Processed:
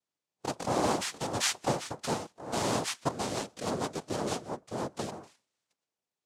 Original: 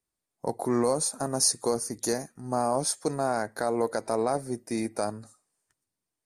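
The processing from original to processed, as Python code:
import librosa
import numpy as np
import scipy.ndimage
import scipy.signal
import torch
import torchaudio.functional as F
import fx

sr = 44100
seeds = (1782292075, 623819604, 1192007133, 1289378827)

y = fx.noise_vocoder(x, sr, seeds[0], bands=2)
y = fx.rotary(y, sr, hz=6.3, at=(3.11, 5.12))
y = y * librosa.db_to_amplitude(-3.5)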